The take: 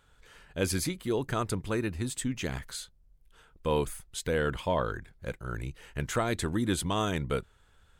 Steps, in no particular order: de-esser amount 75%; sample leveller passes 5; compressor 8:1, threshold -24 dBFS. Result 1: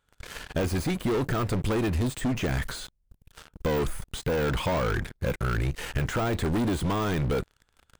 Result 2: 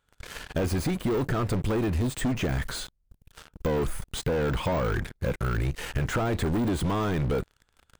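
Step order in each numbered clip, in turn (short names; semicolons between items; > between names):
sample leveller > compressor > de-esser; sample leveller > de-esser > compressor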